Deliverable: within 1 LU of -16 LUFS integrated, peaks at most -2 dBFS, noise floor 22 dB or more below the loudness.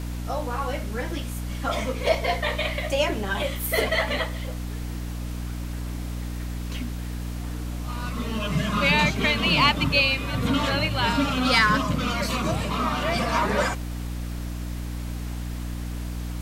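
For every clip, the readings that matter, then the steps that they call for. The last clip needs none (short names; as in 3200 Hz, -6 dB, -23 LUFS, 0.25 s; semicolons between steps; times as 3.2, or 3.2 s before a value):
hum 60 Hz; harmonics up to 300 Hz; hum level -29 dBFS; noise floor -32 dBFS; noise floor target -48 dBFS; loudness -25.5 LUFS; peak -6.0 dBFS; loudness target -16.0 LUFS
-> de-hum 60 Hz, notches 5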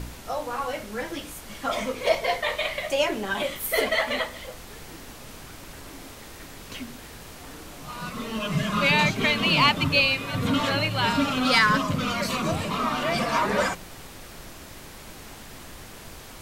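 hum none; noise floor -43 dBFS; noise floor target -46 dBFS
-> noise print and reduce 6 dB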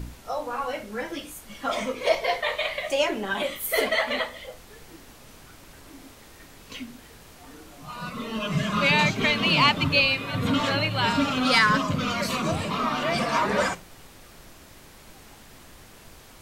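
noise floor -49 dBFS; loudness -24.0 LUFS; peak -7.0 dBFS; loudness target -16.0 LUFS
-> gain +8 dB; limiter -2 dBFS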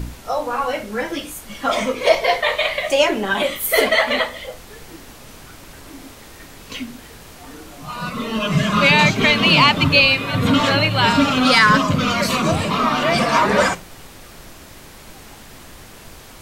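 loudness -16.5 LUFS; peak -2.0 dBFS; noise floor -41 dBFS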